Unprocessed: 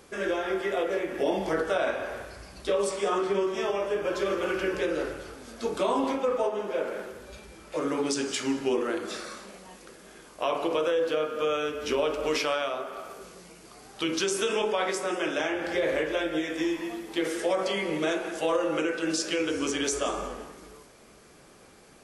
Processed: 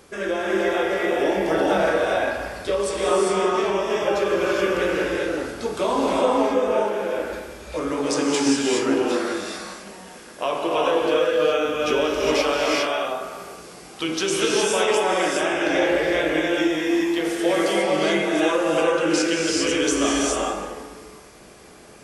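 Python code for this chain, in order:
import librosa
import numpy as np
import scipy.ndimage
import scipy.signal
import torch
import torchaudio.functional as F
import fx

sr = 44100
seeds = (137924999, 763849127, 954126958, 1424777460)

y = fx.rev_gated(x, sr, seeds[0], gate_ms=440, shape='rising', drr_db=-3.0)
y = y * librosa.db_to_amplitude(3.0)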